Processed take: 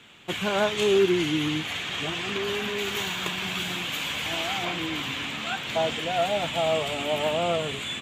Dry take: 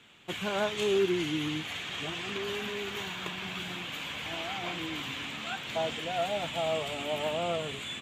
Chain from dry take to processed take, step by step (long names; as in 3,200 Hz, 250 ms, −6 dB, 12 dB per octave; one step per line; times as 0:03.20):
0:02.78–0:04.65: high-shelf EQ 4,800 Hz +7.5 dB
level +6 dB